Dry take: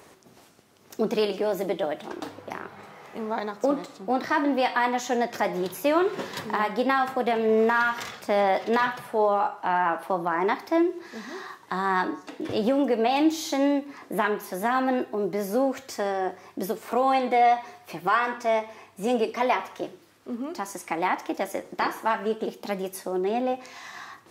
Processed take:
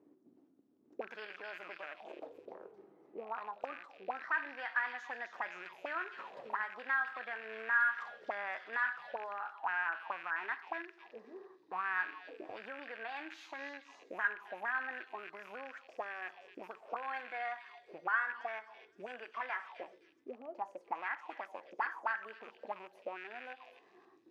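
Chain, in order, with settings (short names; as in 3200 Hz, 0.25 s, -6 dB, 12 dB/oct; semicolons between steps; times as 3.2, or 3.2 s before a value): rattling part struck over -38 dBFS, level -22 dBFS; auto-wah 270–1600 Hz, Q 6, up, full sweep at -22.5 dBFS; delay with a stepping band-pass 0.26 s, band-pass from 4100 Hz, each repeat 0.7 oct, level -2.5 dB; gain -1.5 dB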